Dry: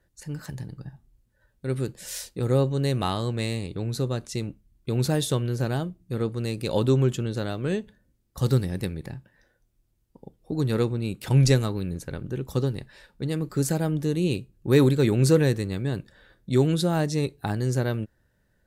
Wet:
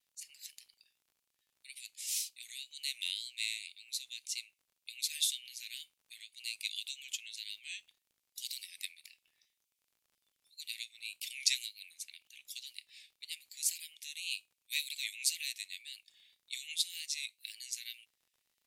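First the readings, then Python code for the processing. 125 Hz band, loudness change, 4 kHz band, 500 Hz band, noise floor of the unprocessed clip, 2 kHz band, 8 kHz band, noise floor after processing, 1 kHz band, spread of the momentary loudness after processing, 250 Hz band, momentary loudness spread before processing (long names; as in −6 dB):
below −40 dB, −12.5 dB, 0.0 dB, below −40 dB, −69 dBFS, −6.0 dB, 0.0 dB, −84 dBFS, below −40 dB, 18 LU, below −40 dB, 15 LU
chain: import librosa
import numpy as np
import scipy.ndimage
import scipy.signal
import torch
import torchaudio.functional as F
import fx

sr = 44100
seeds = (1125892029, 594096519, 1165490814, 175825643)

y = scipy.signal.sosfilt(scipy.signal.butter(12, 2200.0, 'highpass', fs=sr, output='sos'), x)
y = fx.dmg_crackle(y, sr, seeds[0], per_s=61.0, level_db=-59.0)
y = fx.vibrato(y, sr, rate_hz=1.9, depth_cents=51.0)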